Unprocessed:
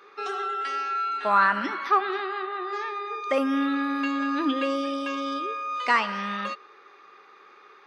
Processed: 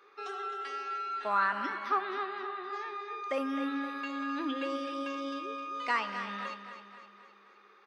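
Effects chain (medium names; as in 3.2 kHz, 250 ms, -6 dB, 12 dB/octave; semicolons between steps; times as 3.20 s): high-pass 180 Hz; on a send: feedback delay 260 ms, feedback 52%, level -10 dB; on the sum: trim -8.5 dB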